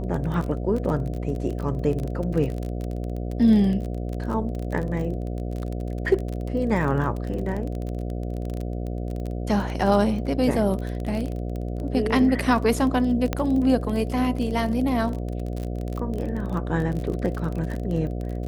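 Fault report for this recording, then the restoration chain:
buzz 60 Hz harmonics 12 -29 dBFS
crackle 30/s -28 dBFS
13.33 pop -10 dBFS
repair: de-click; de-hum 60 Hz, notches 12

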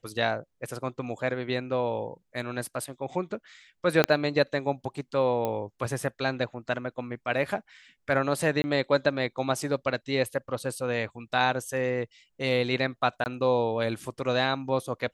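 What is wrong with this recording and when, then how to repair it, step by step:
4.04 pop -6 dBFS
5.45 pop -16 dBFS
8.62–8.64 gap 20 ms
13.24–13.26 gap 19 ms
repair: de-click; interpolate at 8.62, 20 ms; interpolate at 13.24, 19 ms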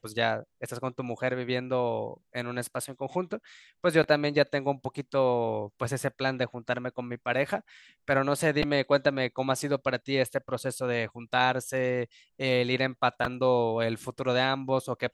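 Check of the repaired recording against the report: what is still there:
4.04 pop

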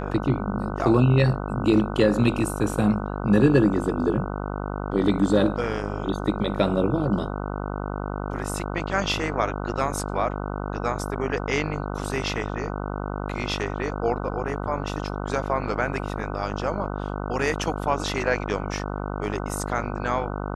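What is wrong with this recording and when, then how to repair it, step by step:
buzz 50 Hz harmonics 30 -30 dBFS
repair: de-hum 50 Hz, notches 30

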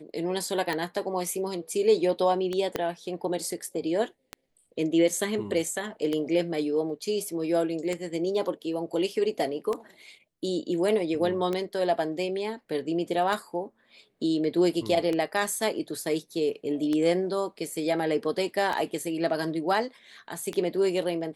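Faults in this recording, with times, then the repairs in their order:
tick 33 1/3 rpm -16 dBFS
2.76 pop -13 dBFS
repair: de-click

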